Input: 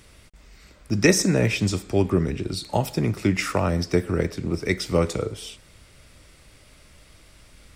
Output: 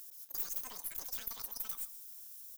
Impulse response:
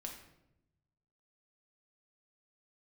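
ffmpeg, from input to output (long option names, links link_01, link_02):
-filter_complex "[0:a]asetrate=38170,aresample=44100,atempo=1.15535,aderivative,areverse,acompressor=threshold=-45dB:ratio=6,areverse,aeval=exprs='clip(val(0),-1,0.00158)':channel_layout=same,crystalizer=i=5.5:c=0,asetrate=132741,aresample=44100,asplit=2[link_01][link_02];[link_02]aecho=0:1:129:0.141[link_03];[link_01][link_03]amix=inputs=2:normalize=0,volume=2dB"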